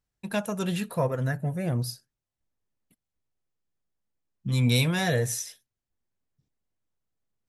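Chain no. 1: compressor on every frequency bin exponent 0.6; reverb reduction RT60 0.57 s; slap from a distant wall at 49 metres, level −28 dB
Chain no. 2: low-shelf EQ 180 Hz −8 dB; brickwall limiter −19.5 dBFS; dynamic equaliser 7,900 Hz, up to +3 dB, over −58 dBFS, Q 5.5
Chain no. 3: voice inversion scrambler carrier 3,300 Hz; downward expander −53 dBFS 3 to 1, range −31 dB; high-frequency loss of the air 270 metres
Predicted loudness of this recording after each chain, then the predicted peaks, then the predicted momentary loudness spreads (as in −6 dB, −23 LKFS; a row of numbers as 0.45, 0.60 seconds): −26.5, −31.5, −29.0 LKFS; −9.5, −19.0, −16.0 dBFS; 11, 9, 9 LU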